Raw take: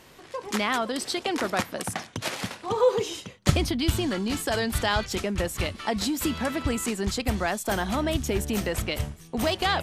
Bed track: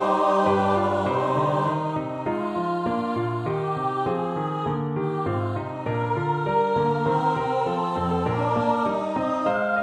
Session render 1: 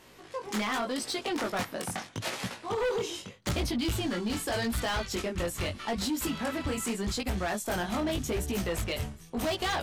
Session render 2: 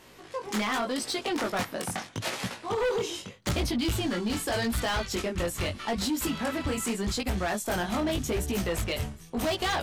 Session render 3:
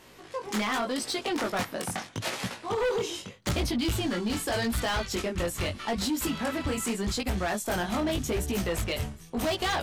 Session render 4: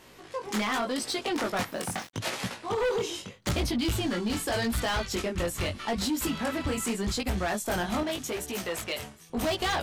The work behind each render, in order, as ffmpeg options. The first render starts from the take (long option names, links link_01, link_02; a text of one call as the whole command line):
ffmpeg -i in.wav -af "flanger=delay=16:depth=7.4:speed=0.82,asoftclip=type=hard:threshold=-26dB" out.wav
ffmpeg -i in.wav -af "volume=2dB" out.wav
ffmpeg -i in.wav -af anull out.wav
ffmpeg -i in.wav -filter_complex "[0:a]asplit=3[link_01][link_02][link_03];[link_01]afade=type=out:start_time=1.7:duration=0.02[link_04];[link_02]aeval=exprs='val(0)*gte(abs(val(0)),0.00596)':channel_layout=same,afade=type=in:start_time=1.7:duration=0.02,afade=type=out:start_time=2.13:duration=0.02[link_05];[link_03]afade=type=in:start_time=2.13:duration=0.02[link_06];[link_04][link_05][link_06]amix=inputs=3:normalize=0,asettb=1/sr,asplit=3[link_07][link_08][link_09];[link_07]atrim=end=8.034[link_10];[link_08]atrim=start=8.03:end=9.3,asetpts=PTS-STARTPTS,afade=type=in:duration=0.004:curve=qsin,afade=type=out:start_time=1.266:duration=0.004:curve=qsin,highpass=frequency=460:poles=1[link_11];[link_09]atrim=start=9.296[link_12];[link_10][link_11]acrossfade=duration=0.004:curve1=hsin:curve2=qsin[link_13];[link_13][link_12]acrossfade=duration=0.004:curve1=qsin:curve2=hsin" out.wav